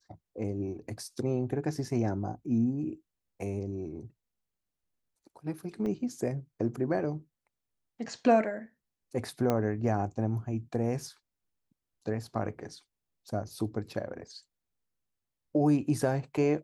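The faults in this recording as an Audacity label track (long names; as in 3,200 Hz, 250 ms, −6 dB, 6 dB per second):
5.860000	5.860000	drop-out 2.6 ms
9.500000	9.500000	click −15 dBFS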